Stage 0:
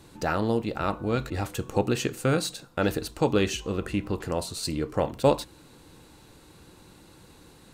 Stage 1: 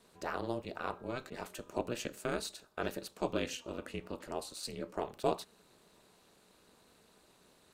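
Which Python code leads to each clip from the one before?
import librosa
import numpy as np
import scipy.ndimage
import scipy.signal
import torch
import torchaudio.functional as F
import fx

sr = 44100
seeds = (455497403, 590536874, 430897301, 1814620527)

y = scipy.signal.sosfilt(scipy.signal.butter(2, 280.0, 'highpass', fs=sr, output='sos'), x)
y = y * np.sin(2.0 * np.pi * 120.0 * np.arange(len(y)) / sr)
y = y * 10.0 ** (-7.0 / 20.0)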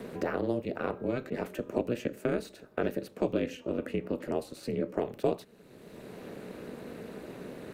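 y = fx.graphic_eq(x, sr, hz=(125, 250, 500, 1000, 2000, 4000, 8000), db=(7, 8, 8, -5, 5, -5, -7))
y = fx.band_squash(y, sr, depth_pct=70)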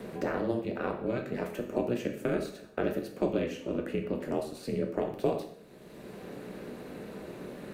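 y = fx.rev_plate(x, sr, seeds[0], rt60_s=0.63, hf_ratio=0.9, predelay_ms=0, drr_db=3.5)
y = y * 10.0 ** (-1.0 / 20.0)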